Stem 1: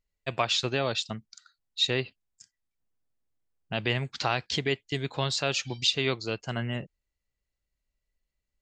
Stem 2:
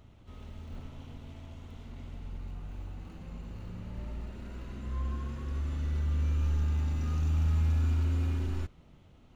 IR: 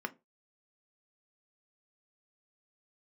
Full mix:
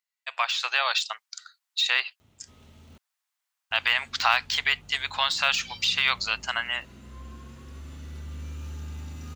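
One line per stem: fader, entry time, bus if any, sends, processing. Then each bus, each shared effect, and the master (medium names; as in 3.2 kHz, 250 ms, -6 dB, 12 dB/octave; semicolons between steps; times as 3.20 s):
+0.5 dB, 0.00 s, no send, de-esser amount 85%; inverse Chebyshev high-pass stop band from 270 Hz, stop band 60 dB; level rider gain up to 10 dB
-5.0 dB, 2.20 s, muted 2.98–3.71 s, no send, high-pass 80 Hz 12 dB/octave; treble shelf 3.3 kHz +11 dB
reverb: none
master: none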